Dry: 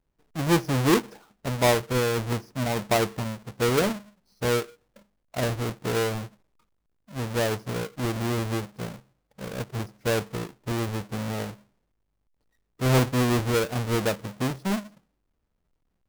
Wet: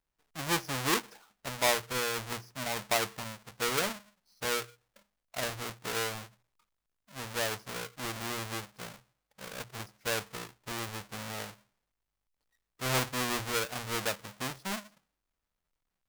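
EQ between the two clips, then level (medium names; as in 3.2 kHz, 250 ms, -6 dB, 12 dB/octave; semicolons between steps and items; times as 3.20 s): tone controls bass -10 dB, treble +1 dB; peaking EQ 380 Hz -9.5 dB 2.1 oct; hum notches 60/120 Hz; -1.5 dB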